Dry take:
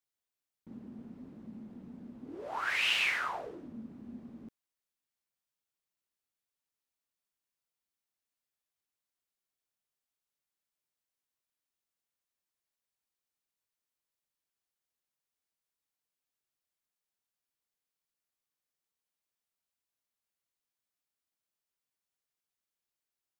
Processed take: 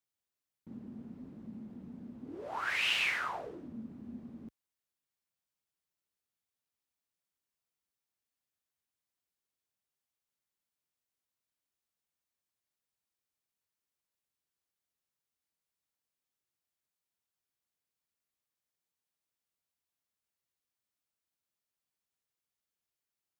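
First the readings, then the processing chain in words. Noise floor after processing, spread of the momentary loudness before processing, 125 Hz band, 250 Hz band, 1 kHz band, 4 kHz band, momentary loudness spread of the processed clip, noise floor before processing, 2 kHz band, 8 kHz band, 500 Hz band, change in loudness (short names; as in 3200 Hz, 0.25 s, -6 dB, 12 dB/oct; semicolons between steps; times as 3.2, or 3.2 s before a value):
under -85 dBFS, 21 LU, +2.0 dB, +0.5 dB, -1.5 dB, -1.5 dB, 20 LU, under -85 dBFS, -1.5 dB, -1.5 dB, -1.0 dB, -2.5 dB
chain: HPF 51 Hz; low shelf 180 Hz +6 dB; gain -1.5 dB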